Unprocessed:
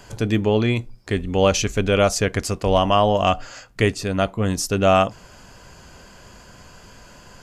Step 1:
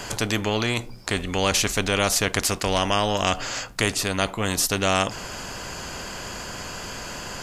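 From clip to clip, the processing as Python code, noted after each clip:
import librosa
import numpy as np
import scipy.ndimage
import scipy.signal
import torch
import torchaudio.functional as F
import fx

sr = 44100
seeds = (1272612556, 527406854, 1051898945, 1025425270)

y = fx.spectral_comp(x, sr, ratio=2.0)
y = y * librosa.db_to_amplitude(2.0)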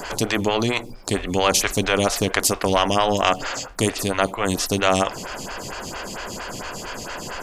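y = fx.stagger_phaser(x, sr, hz=4.4)
y = y * librosa.db_to_amplitude(6.0)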